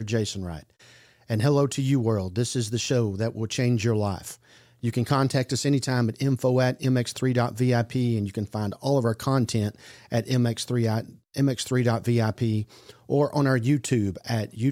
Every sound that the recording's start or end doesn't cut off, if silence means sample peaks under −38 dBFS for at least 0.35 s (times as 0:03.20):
0:01.30–0:04.34